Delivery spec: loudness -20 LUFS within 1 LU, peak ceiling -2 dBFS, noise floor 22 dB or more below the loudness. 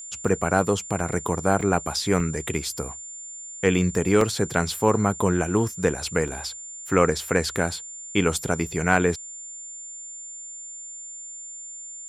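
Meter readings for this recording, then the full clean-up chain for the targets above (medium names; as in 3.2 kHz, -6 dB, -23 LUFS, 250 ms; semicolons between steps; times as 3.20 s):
dropouts 7; longest dropout 2.8 ms; steady tone 7.2 kHz; tone level -36 dBFS; loudness -24.0 LUFS; peak level -2.5 dBFS; loudness target -20.0 LUFS
-> interpolate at 0.28/1.00/1.61/2.20/4.21/6.28/8.38 s, 2.8 ms; band-stop 7.2 kHz, Q 30; trim +4 dB; peak limiter -2 dBFS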